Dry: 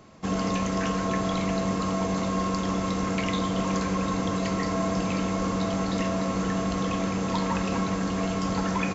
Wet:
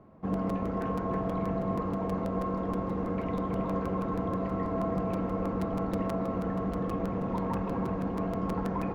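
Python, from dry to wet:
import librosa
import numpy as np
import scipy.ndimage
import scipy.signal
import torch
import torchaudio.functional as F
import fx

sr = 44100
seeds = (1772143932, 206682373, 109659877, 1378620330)

y = scipy.signal.sosfilt(scipy.signal.butter(2, 1000.0, 'lowpass', fs=sr, output='sos'), x)
y = fx.echo_feedback(y, sr, ms=324, feedback_pct=51, wet_db=-7)
y = fx.buffer_crackle(y, sr, first_s=0.33, period_s=0.16, block=256, kind='repeat')
y = y * 10.0 ** (-3.0 / 20.0)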